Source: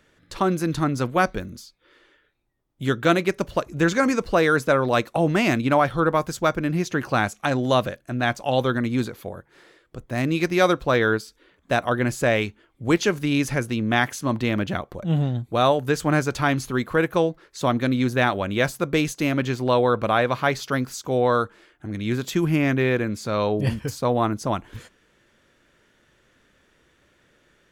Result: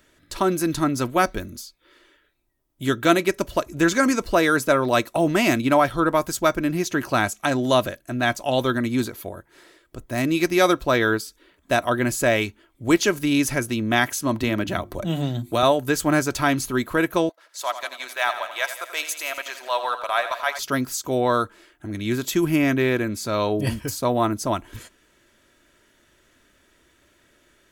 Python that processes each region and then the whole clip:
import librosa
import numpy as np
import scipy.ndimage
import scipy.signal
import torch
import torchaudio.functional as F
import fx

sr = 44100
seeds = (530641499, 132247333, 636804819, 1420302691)

y = fx.chain(x, sr, fx.hum_notches(base_hz=50, count=7),
    fx.band_squash(depth_pct=70), at=(14.43, 15.63))
y = fx.chain(y, sr, fx.highpass(hz=660.0, slope=24),
    fx.transient(attack_db=-4, sustain_db=-8),
    fx.echo_feedback(ms=85, feedback_pct=58, wet_db=-11), at=(17.29, 20.59))
y = fx.high_shelf(y, sr, hz=7400.0, db=12.0)
y = y + 0.38 * np.pad(y, (int(3.1 * sr / 1000.0), 0))[:len(y)]